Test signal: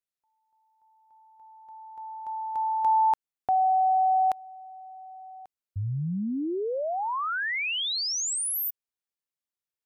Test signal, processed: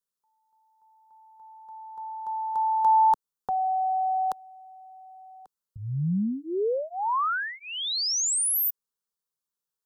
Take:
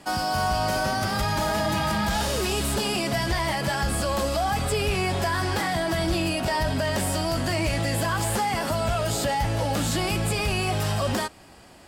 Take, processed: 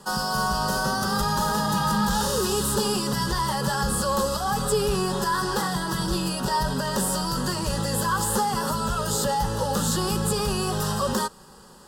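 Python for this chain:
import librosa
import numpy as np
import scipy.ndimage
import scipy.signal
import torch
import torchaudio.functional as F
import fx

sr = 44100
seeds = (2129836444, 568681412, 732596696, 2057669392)

y = fx.fixed_phaser(x, sr, hz=450.0, stages=8)
y = y * librosa.db_to_amplitude(4.5)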